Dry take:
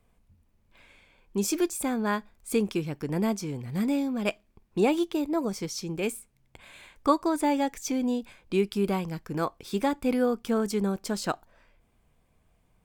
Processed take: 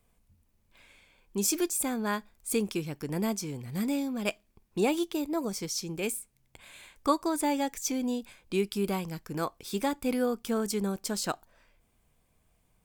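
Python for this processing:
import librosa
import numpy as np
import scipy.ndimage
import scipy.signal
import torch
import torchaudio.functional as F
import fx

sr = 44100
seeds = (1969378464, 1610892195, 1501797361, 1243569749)

y = fx.high_shelf(x, sr, hz=4400.0, db=9.5)
y = F.gain(torch.from_numpy(y), -3.5).numpy()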